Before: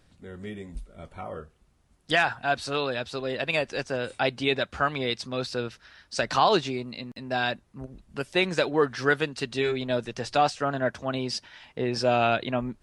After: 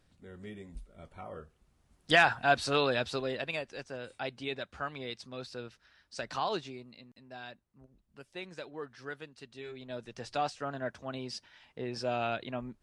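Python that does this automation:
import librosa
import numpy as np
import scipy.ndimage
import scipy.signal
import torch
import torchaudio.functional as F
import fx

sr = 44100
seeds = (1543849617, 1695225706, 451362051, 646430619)

y = fx.gain(x, sr, db=fx.line((1.29, -7.5), (2.23, 0.0), (3.1, 0.0), (3.65, -12.0), (6.52, -12.0), (7.35, -19.0), (9.61, -19.0), (10.22, -10.0)))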